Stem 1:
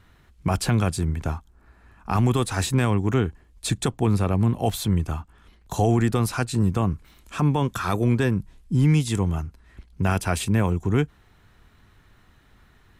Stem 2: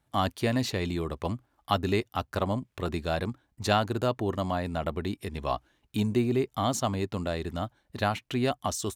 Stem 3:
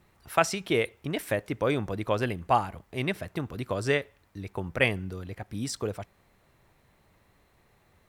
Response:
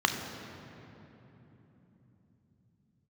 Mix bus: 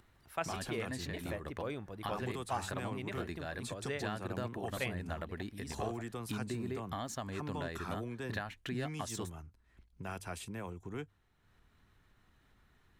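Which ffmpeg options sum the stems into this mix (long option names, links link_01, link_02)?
-filter_complex "[0:a]bandreject=frequency=50:width_type=h:width=6,bandreject=frequency=100:width_type=h:width=6,acrossover=split=300[link_01][link_02];[link_01]acompressor=threshold=-27dB:ratio=6[link_03];[link_03][link_02]amix=inputs=2:normalize=0,volume=-17dB[link_04];[1:a]equalizer=frequency=1700:width=3.8:gain=11.5,acompressor=threshold=-37dB:ratio=4,adelay=350,volume=-2dB[link_05];[2:a]volume=-14dB,asplit=2[link_06][link_07];[link_07]apad=whole_len=410198[link_08];[link_05][link_08]sidechaincompress=threshold=-45dB:ratio=8:attack=16:release=140[link_09];[link_04][link_09][link_06]amix=inputs=3:normalize=0,acompressor=mode=upward:threshold=-59dB:ratio=2.5"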